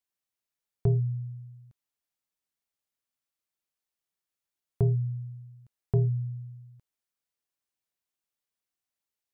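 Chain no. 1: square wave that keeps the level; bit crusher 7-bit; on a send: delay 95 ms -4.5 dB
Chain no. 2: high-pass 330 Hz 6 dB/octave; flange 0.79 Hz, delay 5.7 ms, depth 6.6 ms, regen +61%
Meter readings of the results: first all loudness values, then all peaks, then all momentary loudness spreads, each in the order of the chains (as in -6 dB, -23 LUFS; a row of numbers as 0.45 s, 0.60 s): -27.0 LUFS, -40.5 LUFS; -15.0 dBFS, -24.5 dBFS; 18 LU, 20 LU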